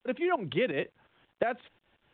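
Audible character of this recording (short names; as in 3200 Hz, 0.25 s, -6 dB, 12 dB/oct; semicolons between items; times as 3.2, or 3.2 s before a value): tremolo saw up 5.6 Hz, depth 70%; a quantiser's noise floor 12-bit, dither none; µ-law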